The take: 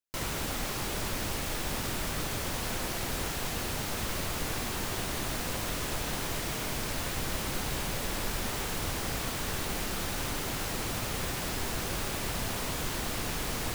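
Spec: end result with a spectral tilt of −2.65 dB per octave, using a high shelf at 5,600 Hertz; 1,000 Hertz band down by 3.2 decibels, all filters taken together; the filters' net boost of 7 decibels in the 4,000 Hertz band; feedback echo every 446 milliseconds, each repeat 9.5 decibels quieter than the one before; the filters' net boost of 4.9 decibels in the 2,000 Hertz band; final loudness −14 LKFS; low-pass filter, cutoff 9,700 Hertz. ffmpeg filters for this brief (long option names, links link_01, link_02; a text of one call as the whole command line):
ffmpeg -i in.wav -af "lowpass=9700,equalizer=frequency=1000:width_type=o:gain=-6.5,equalizer=frequency=2000:width_type=o:gain=5.5,equalizer=frequency=4000:width_type=o:gain=4.5,highshelf=frequency=5600:gain=8,aecho=1:1:446|892|1338|1784:0.335|0.111|0.0365|0.012,volume=15dB" out.wav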